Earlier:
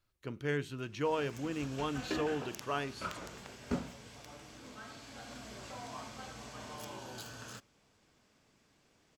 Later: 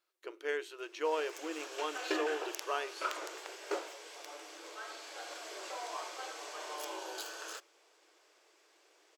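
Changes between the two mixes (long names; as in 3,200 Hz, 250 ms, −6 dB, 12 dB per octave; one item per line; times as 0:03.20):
background +4.5 dB
master: add linear-phase brick-wall high-pass 310 Hz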